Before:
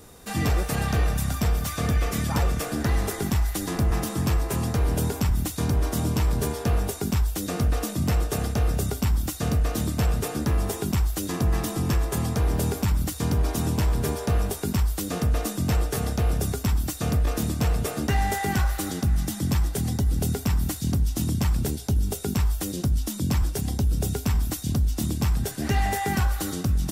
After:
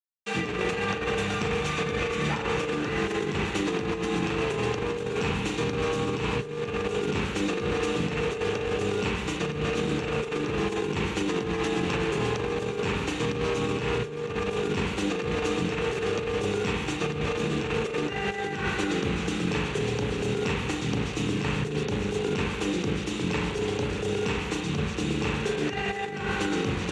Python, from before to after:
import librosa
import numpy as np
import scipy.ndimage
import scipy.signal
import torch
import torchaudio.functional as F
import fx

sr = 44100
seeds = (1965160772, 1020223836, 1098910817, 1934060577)

p1 = fx.quant_dither(x, sr, seeds[0], bits=6, dither='none')
p2 = fx.cabinet(p1, sr, low_hz=190.0, low_slope=12, high_hz=6300.0, hz=(250.0, 450.0, 640.0, 2600.0, 5100.0), db=(-8, 8, -9, 8, -9))
p3 = p2 + fx.echo_single(p2, sr, ms=335, db=-20.5, dry=0)
p4 = fx.rev_spring(p3, sr, rt60_s=1.2, pass_ms=(33, 40), chirp_ms=30, drr_db=-1.0)
y = fx.over_compress(p4, sr, threshold_db=-27.0, ratio=-0.5)